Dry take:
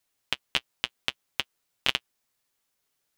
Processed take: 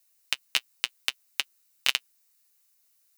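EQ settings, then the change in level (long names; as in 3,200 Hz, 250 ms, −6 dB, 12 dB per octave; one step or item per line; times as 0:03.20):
spectral tilt +4 dB per octave
low-shelf EQ 170 Hz +4 dB
notch filter 3,300 Hz, Q 8.9
−3.5 dB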